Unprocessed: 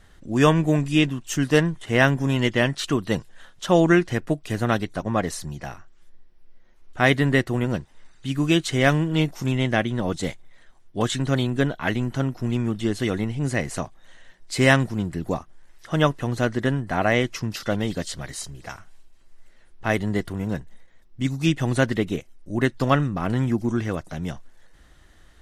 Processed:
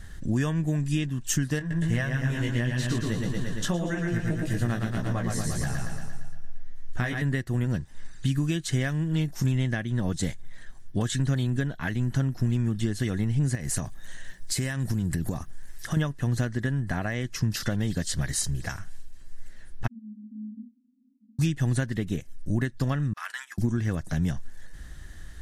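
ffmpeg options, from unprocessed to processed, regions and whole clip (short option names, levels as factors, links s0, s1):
-filter_complex "[0:a]asettb=1/sr,asplit=3[s0][s1][s2];[s0]atrim=end=1.594[s3];[s1]atrim=start=1.59:end=7.22,asetpts=PTS-STARTPTS,afade=t=in:d=0.004:c=qsin,afade=t=out:st=5.626:d=0.004:c=qsin,aecho=1:1:115|230|345|460|575|690|805|920:0.668|0.394|0.233|0.137|0.081|0.0478|0.0282|0.0166,atrim=end_sample=248283,flanger=delay=15.5:depth=2.9:speed=1.7[s4];[s2]atrim=start=7.216[s5];[s3][s4]acrossfade=d=0.004:c1=hsin:c2=qsin[s6];[s6][s5]acrossfade=d=0.004:c1=qsin:c2=hsin,asettb=1/sr,asplit=3[s7][s8][s9];[s7]atrim=end=13.554[s10];[s8]atrim=start=13.55:end=15.97,asetpts=PTS-STARTPTS,afade=t=in:d=0.004:c=qsin,afade=t=out:st=2.416:d=0.004:c=qsin,highshelf=f=9100:g=10,acompressor=threshold=0.0282:ratio=6:attack=3.2:release=140:knee=1:detection=peak[s11];[s9]atrim=start=15.966[s12];[s10][s11]acrossfade=d=0.004:c1=hsin:c2=qsin[s13];[s13][s12]acrossfade=d=0.004:c1=qsin:c2=hsin,asettb=1/sr,asplit=3[s14][s15][s16];[s14]atrim=end=19.874[s17];[s15]atrim=start=19.87:end=21.39,asetpts=PTS-STARTPTS,afade=t=in:d=0.004:c=qsin,afade=t=out:st=1.516:d=0.004:c=qsin,afreqshift=-310,acompressor=threshold=0.00631:ratio=2:attack=3.2:release=140:knee=1:detection=peak,asuperpass=centerf=240:order=20:qfactor=3.8[s18];[s16]atrim=start=21.386[s19];[s17][s18]acrossfade=d=0.004:c1=hsin:c2=qsin[s20];[s20][s19]acrossfade=d=0.004:c1=qsin:c2=hsin,asettb=1/sr,asplit=3[s21][s22][s23];[s21]atrim=end=23.134[s24];[s22]atrim=start=23.13:end=23.58,asetpts=PTS-STARTPTS,afade=t=in:d=0.004:c=qsin,afade=t=out:st=0.446:d=0.004:c=qsin,highpass=f=1200:w=0.5412,highpass=f=1200:w=1.3066,agate=range=0.2:threshold=0.00708:ratio=16:release=100:detection=peak[s25];[s23]atrim=start=23.576[s26];[s24][s25]acrossfade=d=0.004:c1=hsin:c2=qsin[s27];[s27][s26]acrossfade=d=0.004:c1=qsin:c2=hsin,equalizer=f=1700:t=o:w=0.27:g=10,acompressor=threshold=0.0282:ratio=6,bass=f=250:g=12,treble=f=4000:g=9"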